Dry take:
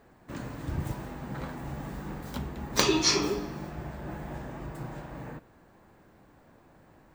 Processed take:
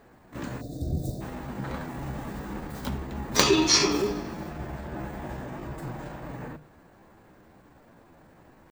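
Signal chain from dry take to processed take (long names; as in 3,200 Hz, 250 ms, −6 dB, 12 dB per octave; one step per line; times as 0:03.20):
tempo change 0.82×
gain on a spectral selection 0:00.61–0:01.21, 760–3,500 Hz −27 dB
mains-hum notches 50/100/150 Hz
level +3.5 dB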